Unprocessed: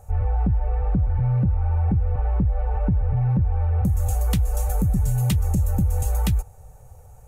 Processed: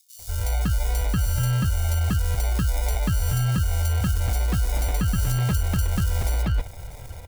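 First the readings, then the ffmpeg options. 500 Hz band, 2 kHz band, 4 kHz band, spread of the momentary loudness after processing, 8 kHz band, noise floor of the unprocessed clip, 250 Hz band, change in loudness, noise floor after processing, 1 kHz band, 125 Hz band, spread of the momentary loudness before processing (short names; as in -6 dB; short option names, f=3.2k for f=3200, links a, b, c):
-1.0 dB, +10.0 dB, +7.5 dB, 4 LU, +5.0 dB, -46 dBFS, -3.0 dB, -1.5 dB, -41 dBFS, -0.5 dB, -2.0 dB, 3 LU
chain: -filter_complex "[0:a]areverse,acompressor=threshold=-29dB:ratio=4,areverse,acrusher=samples=30:mix=1:aa=0.000001,highshelf=f=4.4k:g=11,dynaudnorm=f=180:g=3:m=4dB,acrossover=split=4100[a][b];[a]adelay=190[c];[c][b]amix=inputs=2:normalize=0,volume=3.5dB"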